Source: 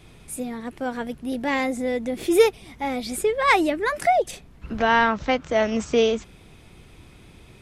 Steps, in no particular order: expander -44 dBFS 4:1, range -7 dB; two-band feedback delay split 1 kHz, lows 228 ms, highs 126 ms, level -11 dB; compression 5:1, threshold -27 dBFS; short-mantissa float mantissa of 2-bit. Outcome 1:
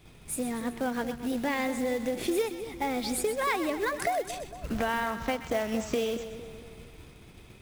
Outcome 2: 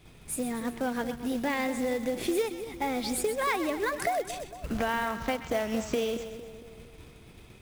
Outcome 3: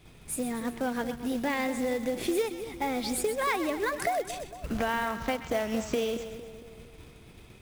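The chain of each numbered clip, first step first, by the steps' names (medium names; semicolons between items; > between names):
compression > short-mantissa float > two-band feedback delay > expander; compression > expander > two-band feedback delay > short-mantissa float; expander > compression > two-band feedback delay > short-mantissa float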